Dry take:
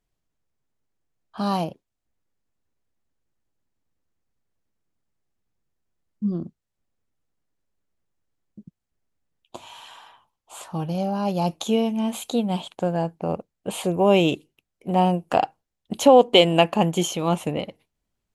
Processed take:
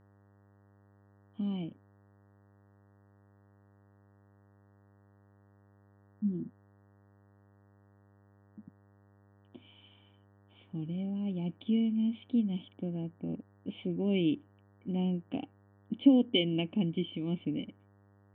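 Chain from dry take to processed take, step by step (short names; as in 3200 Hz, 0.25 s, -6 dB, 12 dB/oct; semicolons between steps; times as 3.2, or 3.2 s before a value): vocal tract filter i; buzz 100 Hz, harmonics 19, -63 dBFS -6 dB/oct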